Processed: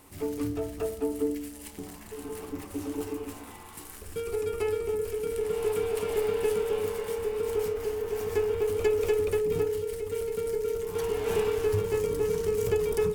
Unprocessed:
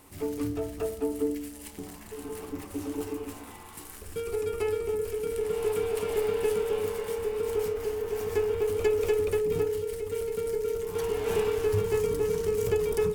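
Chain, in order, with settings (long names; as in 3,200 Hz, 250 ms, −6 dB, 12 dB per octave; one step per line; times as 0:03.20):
0:11.76–0:12.16: amplitude modulation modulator 100 Hz, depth 15%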